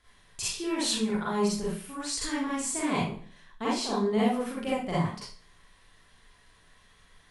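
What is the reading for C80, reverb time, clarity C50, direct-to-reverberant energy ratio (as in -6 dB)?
6.0 dB, 0.50 s, -1.5 dB, -9.0 dB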